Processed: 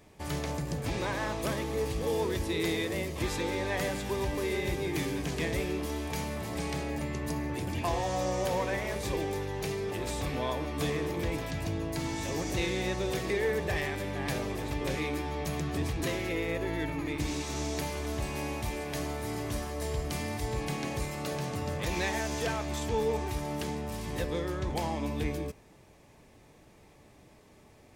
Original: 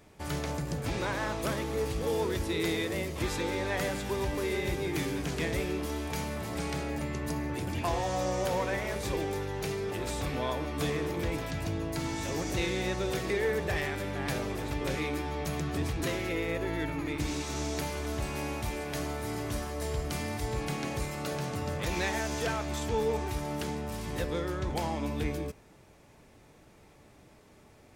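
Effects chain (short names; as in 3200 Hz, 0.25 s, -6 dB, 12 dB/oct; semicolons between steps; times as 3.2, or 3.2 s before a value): notch 1400 Hz, Q 8.2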